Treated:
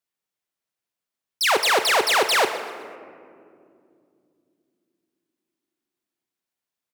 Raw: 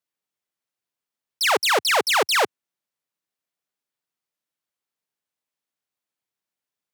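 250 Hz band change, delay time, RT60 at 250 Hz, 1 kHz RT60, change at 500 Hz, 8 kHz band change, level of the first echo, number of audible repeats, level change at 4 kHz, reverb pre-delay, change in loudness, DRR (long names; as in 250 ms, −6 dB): +1.5 dB, 127 ms, 4.6 s, 2.0 s, +1.0 dB, +0.5 dB, −15.0 dB, 2, +0.5 dB, 3 ms, +0.5 dB, 7.5 dB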